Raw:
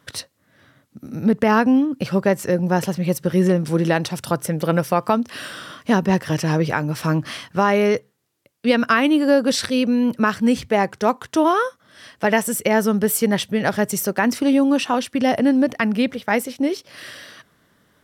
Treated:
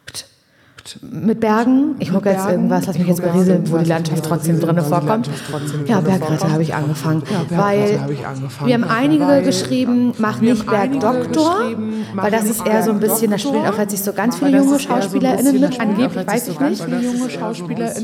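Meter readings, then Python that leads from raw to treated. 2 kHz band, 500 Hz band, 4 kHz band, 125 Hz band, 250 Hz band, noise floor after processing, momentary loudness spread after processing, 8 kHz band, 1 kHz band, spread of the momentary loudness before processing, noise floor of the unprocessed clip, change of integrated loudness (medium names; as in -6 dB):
-1.0 dB, +3.5 dB, +0.5 dB, +6.0 dB, +4.0 dB, -34 dBFS, 8 LU, +3.5 dB, +2.0 dB, 8 LU, -63 dBFS, +3.0 dB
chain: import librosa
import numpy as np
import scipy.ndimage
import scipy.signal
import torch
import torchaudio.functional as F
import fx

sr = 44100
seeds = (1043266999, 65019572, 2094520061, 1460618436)

y = fx.echo_pitch(x, sr, ms=693, semitones=-2, count=3, db_per_echo=-6.0)
y = fx.dynamic_eq(y, sr, hz=2200.0, q=0.83, threshold_db=-35.0, ratio=4.0, max_db=-6)
y = fx.room_shoebox(y, sr, seeds[0], volume_m3=1600.0, walls='mixed', distance_m=0.33)
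y = F.gain(torch.from_numpy(y), 2.5).numpy()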